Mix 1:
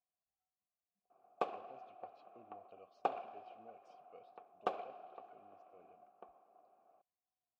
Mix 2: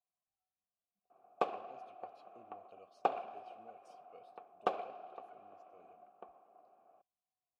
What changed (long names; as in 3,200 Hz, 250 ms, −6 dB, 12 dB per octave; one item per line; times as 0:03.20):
speech: remove high-frequency loss of the air 130 metres
background +3.5 dB